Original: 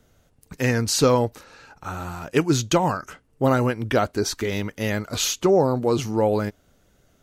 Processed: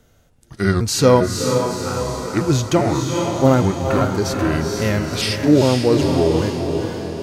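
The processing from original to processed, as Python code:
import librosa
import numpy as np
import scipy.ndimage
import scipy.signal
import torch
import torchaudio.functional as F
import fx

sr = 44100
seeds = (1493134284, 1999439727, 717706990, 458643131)

y = fx.pitch_trill(x, sr, semitones=-4.5, every_ms=401)
y = fx.echo_diffused(y, sr, ms=471, feedback_pct=55, wet_db=-5.5)
y = fx.hpss(y, sr, part='harmonic', gain_db=9)
y = y * 10.0 ** (-2.0 / 20.0)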